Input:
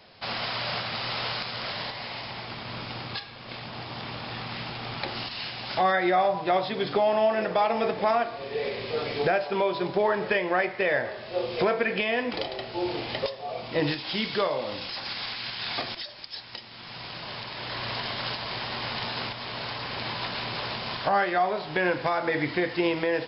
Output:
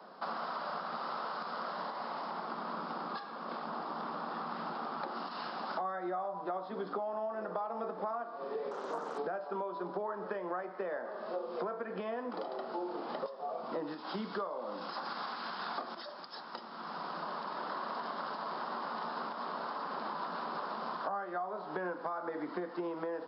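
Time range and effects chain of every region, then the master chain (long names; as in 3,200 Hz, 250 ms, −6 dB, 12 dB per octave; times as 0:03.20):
0:08.71–0:09.18: high-pass filter 220 Hz + highs frequency-modulated by the lows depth 0.79 ms
whole clip: Butterworth high-pass 170 Hz 72 dB per octave; high shelf with overshoot 1,700 Hz −10.5 dB, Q 3; downward compressor 6 to 1, threshold −37 dBFS; level +1 dB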